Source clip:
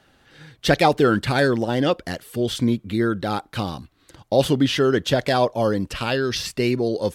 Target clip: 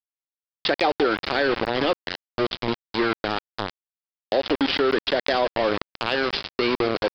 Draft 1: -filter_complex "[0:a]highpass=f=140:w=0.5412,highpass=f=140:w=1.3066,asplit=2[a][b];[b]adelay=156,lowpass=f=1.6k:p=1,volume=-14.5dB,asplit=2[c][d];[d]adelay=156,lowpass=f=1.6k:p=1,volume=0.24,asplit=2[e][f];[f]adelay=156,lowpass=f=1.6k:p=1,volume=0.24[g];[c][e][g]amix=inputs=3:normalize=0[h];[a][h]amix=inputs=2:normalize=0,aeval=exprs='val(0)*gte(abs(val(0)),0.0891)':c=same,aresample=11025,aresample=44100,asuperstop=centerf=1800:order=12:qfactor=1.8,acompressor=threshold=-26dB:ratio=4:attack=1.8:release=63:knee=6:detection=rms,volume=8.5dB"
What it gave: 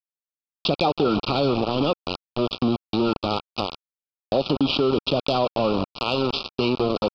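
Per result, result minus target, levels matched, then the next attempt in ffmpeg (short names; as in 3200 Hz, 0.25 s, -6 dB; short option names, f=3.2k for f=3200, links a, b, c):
2000 Hz band -8.5 dB; 125 Hz band +8.5 dB
-filter_complex "[0:a]highpass=f=140:w=0.5412,highpass=f=140:w=1.3066,asplit=2[a][b];[b]adelay=156,lowpass=f=1.6k:p=1,volume=-14.5dB,asplit=2[c][d];[d]adelay=156,lowpass=f=1.6k:p=1,volume=0.24,asplit=2[e][f];[f]adelay=156,lowpass=f=1.6k:p=1,volume=0.24[g];[c][e][g]amix=inputs=3:normalize=0[h];[a][h]amix=inputs=2:normalize=0,aeval=exprs='val(0)*gte(abs(val(0)),0.0891)':c=same,aresample=11025,aresample=44100,acompressor=threshold=-26dB:ratio=4:attack=1.8:release=63:knee=6:detection=rms,volume=8.5dB"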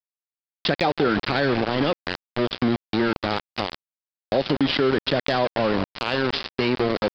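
125 Hz band +8.0 dB
-filter_complex "[0:a]highpass=f=290:w=0.5412,highpass=f=290:w=1.3066,asplit=2[a][b];[b]adelay=156,lowpass=f=1.6k:p=1,volume=-14.5dB,asplit=2[c][d];[d]adelay=156,lowpass=f=1.6k:p=1,volume=0.24,asplit=2[e][f];[f]adelay=156,lowpass=f=1.6k:p=1,volume=0.24[g];[c][e][g]amix=inputs=3:normalize=0[h];[a][h]amix=inputs=2:normalize=0,aeval=exprs='val(0)*gte(abs(val(0)),0.0891)':c=same,aresample=11025,aresample=44100,acompressor=threshold=-26dB:ratio=4:attack=1.8:release=63:knee=6:detection=rms,volume=8.5dB"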